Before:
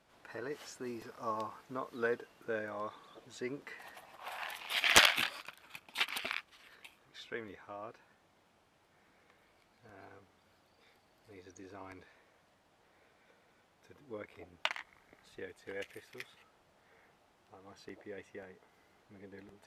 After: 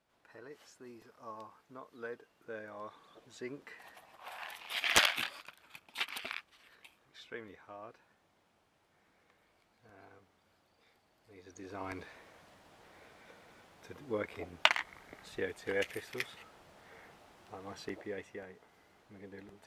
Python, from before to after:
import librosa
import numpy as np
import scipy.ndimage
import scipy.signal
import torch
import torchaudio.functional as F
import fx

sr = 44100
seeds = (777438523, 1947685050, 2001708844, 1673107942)

y = fx.gain(x, sr, db=fx.line((2.13, -9.5), (3.14, -3.0), (11.32, -3.0), (11.9, 9.0), (17.79, 9.0), (18.42, 2.0)))